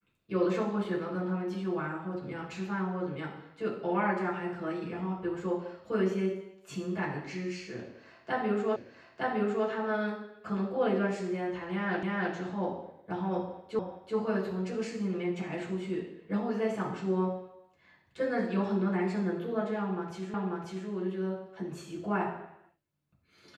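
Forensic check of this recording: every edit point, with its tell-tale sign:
0:08.76: the same again, the last 0.91 s
0:12.03: the same again, the last 0.31 s
0:13.79: the same again, the last 0.38 s
0:20.34: the same again, the last 0.54 s

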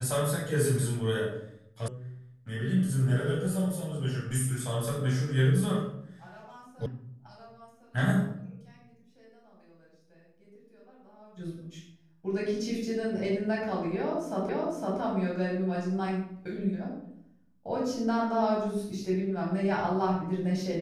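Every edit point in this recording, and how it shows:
0:01.88: cut off before it has died away
0:06.86: cut off before it has died away
0:14.49: the same again, the last 0.51 s

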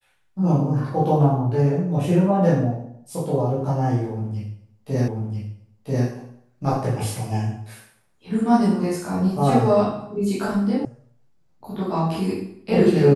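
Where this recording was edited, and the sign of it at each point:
0:05.08: the same again, the last 0.99 s
0:10.85: cut off before it has died away

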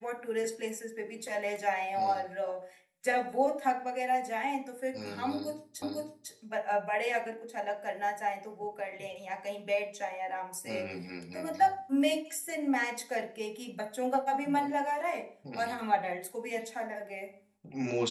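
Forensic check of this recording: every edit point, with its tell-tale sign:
0:05.82: the same again, the last 0.5 s

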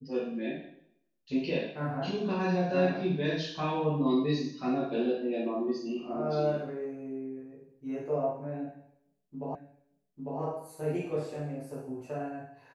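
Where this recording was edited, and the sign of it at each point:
0:09.55: the same again, the last 0.85 s

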